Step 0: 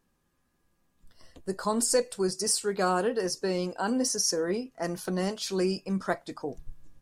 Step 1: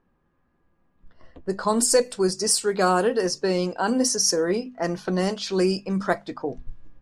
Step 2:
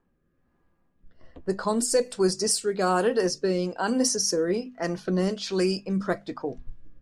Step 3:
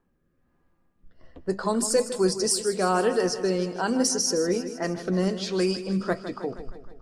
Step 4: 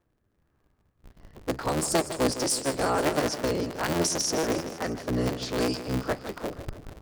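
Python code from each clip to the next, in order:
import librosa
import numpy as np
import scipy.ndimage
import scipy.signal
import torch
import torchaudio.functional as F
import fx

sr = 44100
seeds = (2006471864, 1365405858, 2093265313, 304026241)

y1 = fx.env_lowpass(x, sr, base_hz=1700.0, full_db=-22.5)
y1 = fx.hum_notches(y1, sr, base_hz=50, count=5)
y1 = y1 * 10.0 ** (6.0 / 20.0)
y2 = fx.rotary(y1, sr, hz=1.2)
y3 = fx.echo_feedback(y2, sr, ms=157, feedback_pct=58, wet_db=-12.0)
y4 = fx.cycle_switch(y3, sr, every=3, mode='inverted')
y4 = y4 * 10.0 ** (-2.5 / 20.0)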